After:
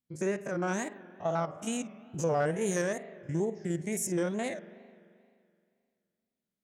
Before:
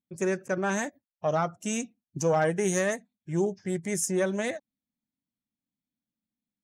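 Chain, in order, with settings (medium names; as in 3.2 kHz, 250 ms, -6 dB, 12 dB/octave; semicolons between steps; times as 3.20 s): spectrogram pixelated in time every 50 ms; in parallel at +2 dB: compression, threshold -35 dBFS, peak gain reduction 13 dB; on the sum: spring tank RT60 2.3 s, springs 43 ms, chirp 65 ms, DRR 14 dB; wow and flutter 130 cents; trim -6 dB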